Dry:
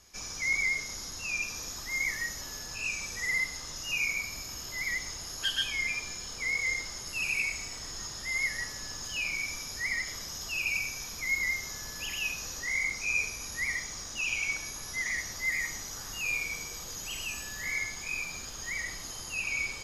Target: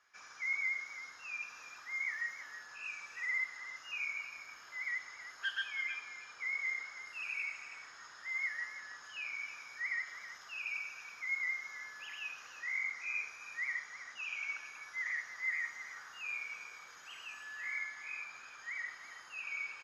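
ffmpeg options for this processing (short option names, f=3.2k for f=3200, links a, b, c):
-filter_complex "[0:a]bandpass=f=1.5k:t=q:w=2.9:csg=0,asplit=2[a][b];[b]aecho=0:1:323:0.237[c];[a][c]amix=inputs=2:normalize=0,volume=1dB"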